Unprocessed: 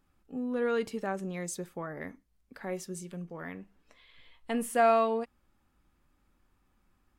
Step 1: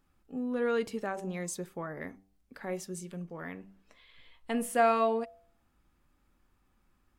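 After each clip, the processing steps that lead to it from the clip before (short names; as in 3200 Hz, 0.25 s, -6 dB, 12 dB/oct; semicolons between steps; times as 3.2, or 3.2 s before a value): de-hum 97.08 Hz, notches 11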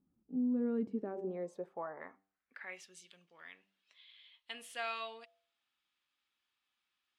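band-pass sweep 220 Hz -> 3400 Hz, 0.79–3.03; gain +3 dB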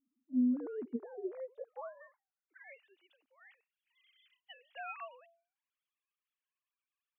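sine-wave speech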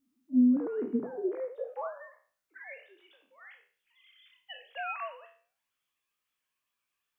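spectral trails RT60 0.43 s; gain +7 dB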